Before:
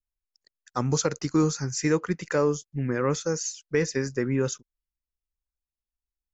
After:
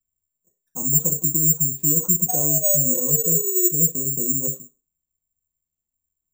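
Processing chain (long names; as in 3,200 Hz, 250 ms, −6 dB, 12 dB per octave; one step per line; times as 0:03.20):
adaptive Wiener filter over 15 samples
treble cut that deepens with the level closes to 2,200 Hz, closed at −20.5 dBFS
sound drawn into the spectrogram fall, 0:02.28–0:03.67, 350–740 Hz −29 dBFS
low-shelf EQ 400 Hz +11 dB
brickwall limiter −21 dBFS, peak gain reduction 15.5 dB
flat-topped bell 1,700 Hz −11 dB 1.1 octaves
convolution reverb RT60 0.35 s, pre-delay 3 ms, DRR −9 dB
bad sample-rate conversion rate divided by 6×, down filtered, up zero stuff
level −17.5 dB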